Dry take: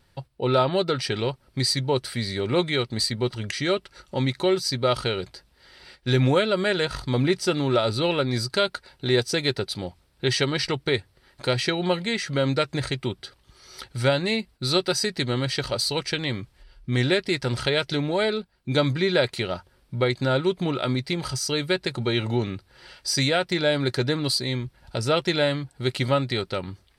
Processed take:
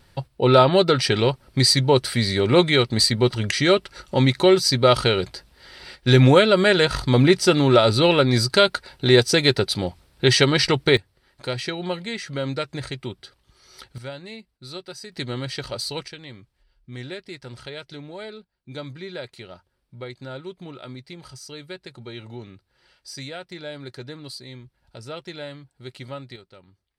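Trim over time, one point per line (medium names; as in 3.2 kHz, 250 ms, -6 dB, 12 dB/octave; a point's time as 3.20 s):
+6.5 dB
from 10.97 s -4 dB
from 13.98 s -14 dB
from 15.12 s -4 dB
from 16.08 s -13 dB
from 26.36 s -20 dB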